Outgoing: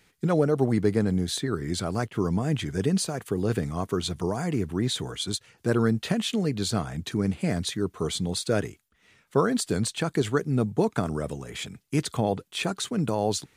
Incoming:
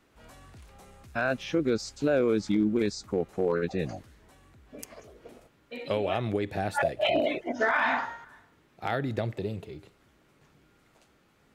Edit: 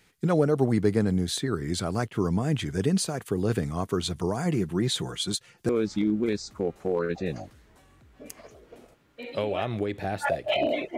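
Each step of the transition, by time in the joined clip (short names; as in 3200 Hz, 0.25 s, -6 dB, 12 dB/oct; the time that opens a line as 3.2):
outgoing
4.45–5.69 comb 5.7 ms, depth 45%
5.69 switch to incoming from 2.22 s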